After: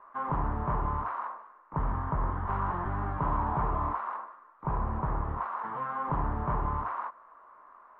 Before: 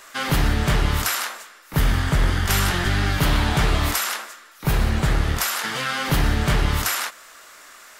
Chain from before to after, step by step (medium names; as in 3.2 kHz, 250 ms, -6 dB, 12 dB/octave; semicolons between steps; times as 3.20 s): four-pole ladder low-pass 1.1 kHz, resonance 75%